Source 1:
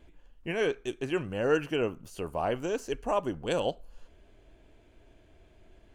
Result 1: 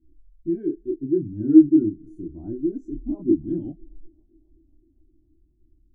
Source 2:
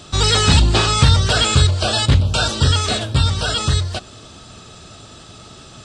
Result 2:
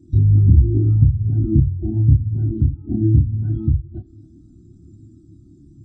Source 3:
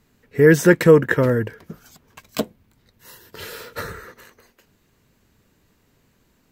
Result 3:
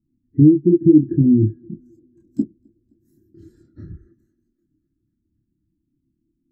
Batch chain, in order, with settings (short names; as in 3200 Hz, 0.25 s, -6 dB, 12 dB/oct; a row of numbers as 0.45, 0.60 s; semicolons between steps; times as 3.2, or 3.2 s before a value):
treble ducked by the level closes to 830 Hz, closed at -14 dBFS; spectral gate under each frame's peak -25 dB strong; EQ curve 220 Hz 0 dB, 330 Hz +9 dB, 500 Hz -24 dB, 730 Hz -19 dB, 1100 Hz -28 dB, 1600 Hz -19 dB, 2600 Hz -29 dB, 6600 Hz -10 dB; compressor 5:1, threshold -18 dBFS; chorus voices 2, 0.31 Hz, delay 28 ms, depth 1.2 ms; bell 430 Hz -8.5 dB 0.22 oct; thinning echo 0.26 s, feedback 83%, high-pass 170 Hz, level -22 dB; spectral expander 1.5:1; normalise peaks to -2 dBFS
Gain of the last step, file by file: +17.5, +11.0, +14.0 dB